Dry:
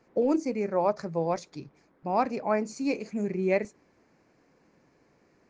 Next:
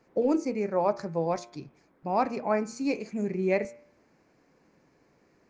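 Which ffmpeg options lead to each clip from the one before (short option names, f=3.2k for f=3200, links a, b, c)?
-af "bandreject=f=117.5:t=h:w=4,bandreject=f=235:t=h:w=4,bandreject=f=352.5:t=h:w=4,bandreject=f=470:t=h:w=4,bandreject=f=587.5:t=h:w=4,bandreject=f=705:t=h:w=4,bandreject=f=822.5:t=h:w=4,bandreject=f=940:t=h:w=4,bandreject=f=1.0575k:t=h:w=4,bandreject=f=1.175k:t=h:w=4,bandreject=f=1.2925k:t=h:w=4,bandreject=f=1.41k:t=h:w=4,bandreject=f=1.5275k:t=h:w=4,bandreject=f=1.645k:t=h:w=4,bandreject=f=1.7625k:t=h:w=4,bandreject=f=1.88k:t=h:w=4,bandreject=f=1.9975k:t=h:w=4,bandreject=f=2.115k:t=h:w=4,bandreject=f=2.2325k:t=h:w=4,bandreject=f=2.35k:t=h:w=4,bandreject=f=2.4675k:t=h:w=4,bandreject=f=2.585k:t=h:w=4,bandreject=f=2.7025k:t=h:w=4,bandreject=f=2.82k:t=h:w=4,bandreject=f=2.9375k:t=h:w=4,bandreject=f=3.055k:t=h:w=4,bandreject=f=3.1725k:t=h:w=4,bandreject=f=3.29k:t=h:w=4,bandreject=f=3.4075k:t=h:w=4"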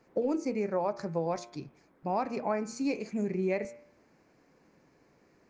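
-af "acompressor=threshold=-26dB:ratio=6"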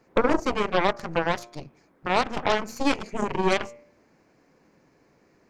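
-af "aeval=exprs='0.133*(cos(1*acos(clip(val(0)/0.133,-1,1)))-cos(1*PI/2))+0.0133*(cos(4*acos(clip(val(0)/0.133,-1,1)))-cos(4*PI/2))+0.0299*(cos(7*acos(clip(val(0)/0.133,-1,1)))-cos(7*PI/2))+0.0119*(cos(8*acos(clip(val(0)/0.133,-1,1)))-cos(8*PI/2))':c=same,volume=8dB"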